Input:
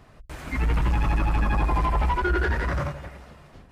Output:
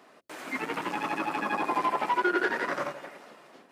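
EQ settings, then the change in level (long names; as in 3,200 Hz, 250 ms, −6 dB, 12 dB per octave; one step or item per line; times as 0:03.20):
high-pass filter 260 Hz 24 dB per octave
0.0 dB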